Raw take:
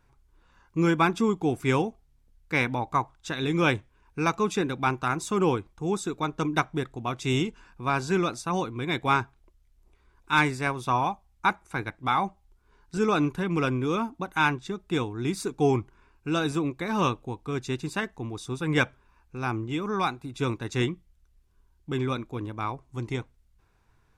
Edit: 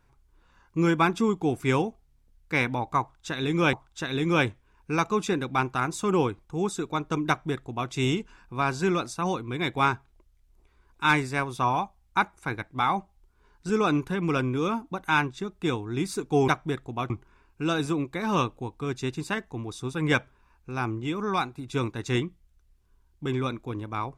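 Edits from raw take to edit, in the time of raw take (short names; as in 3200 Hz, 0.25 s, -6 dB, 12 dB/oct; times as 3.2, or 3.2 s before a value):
3.01–3.73 loop, 2 plays
6.56–7.18 copy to 15.76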